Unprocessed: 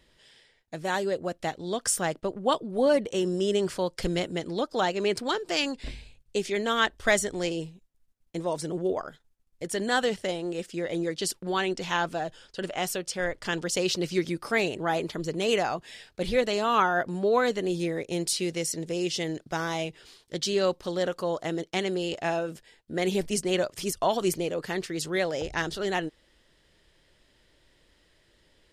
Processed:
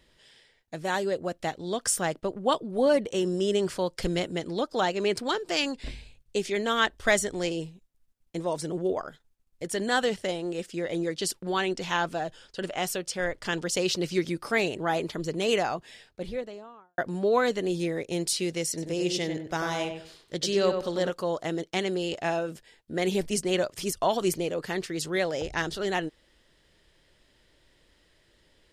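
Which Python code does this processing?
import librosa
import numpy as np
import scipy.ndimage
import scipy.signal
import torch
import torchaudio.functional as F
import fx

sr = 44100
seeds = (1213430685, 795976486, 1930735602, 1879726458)

y = fx.studio_fade_out(x, sr, start_s=15.56, length_s=1.42)
y = fx.echo_filtered(y, sr, ms=95, feedback_pct=28, hz=2200.0, wet_db=-5.5, at=(18.68, 21.1))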